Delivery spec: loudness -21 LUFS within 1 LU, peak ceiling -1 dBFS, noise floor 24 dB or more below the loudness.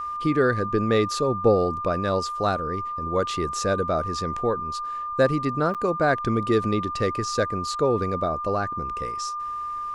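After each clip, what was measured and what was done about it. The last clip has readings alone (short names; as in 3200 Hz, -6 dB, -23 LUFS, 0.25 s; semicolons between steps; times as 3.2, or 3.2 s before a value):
dropouts 1; longest dropout 7.8 ms; steady tone 1200 Hz; tone level -28 dBFS; loudness -24.5 LUFS; peak -8.0 dBFS; loudness target -21.0 LUFS
-> interpolate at 5.74, 7.8 ms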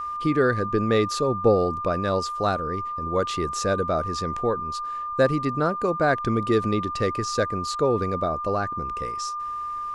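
dropouts 0; steady tone 1200 Hz; tone level -28 dBFS
-> notch 1200 Hz, Q 30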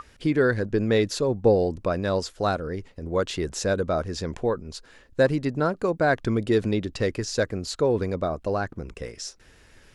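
steady tone none; loudness -25.5 LUFS; peak -8.5 dBFS; loudness target -21.0 LUFS
-> gain +4.5 dB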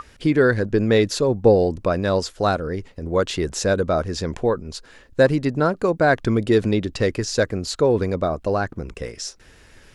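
loudness -21.0 LUFS; peak -4.0 dBFS; noise floor -50 dBFS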